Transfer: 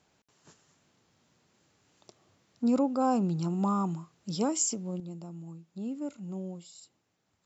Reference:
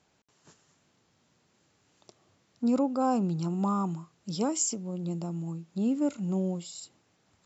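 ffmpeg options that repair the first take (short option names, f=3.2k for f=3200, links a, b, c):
-af "asetnsamples=n=441:p=0,asendcmd='5 volume volume 8.5dB',volume=0dB"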